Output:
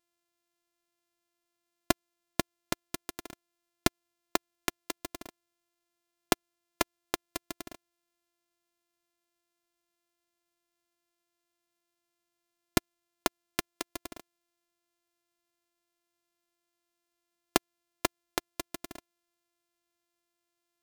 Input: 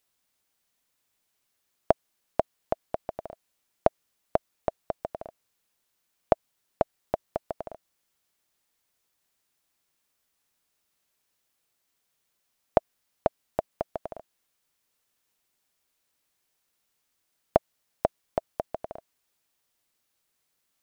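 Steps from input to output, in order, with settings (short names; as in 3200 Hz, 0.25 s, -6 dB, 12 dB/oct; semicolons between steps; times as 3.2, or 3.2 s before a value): sample sorter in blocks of 128 samples; high shelf 3000 Hz +10 dB; in parallel at -8 dB: companded quantiser 2-bit; on the sum: gain -10.5 dB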